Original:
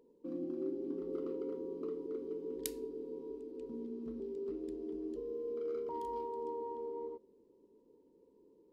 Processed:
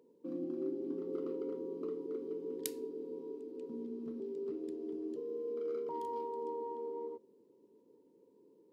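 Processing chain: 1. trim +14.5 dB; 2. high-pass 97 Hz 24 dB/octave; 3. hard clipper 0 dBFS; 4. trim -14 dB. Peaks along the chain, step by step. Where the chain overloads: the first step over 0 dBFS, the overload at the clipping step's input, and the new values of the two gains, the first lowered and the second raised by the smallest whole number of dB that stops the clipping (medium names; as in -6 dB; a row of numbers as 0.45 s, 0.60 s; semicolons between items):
-3.0 dBFS, -3.0 dBFS, -3.0 dBFS, -17.0 dBFS; nothing clips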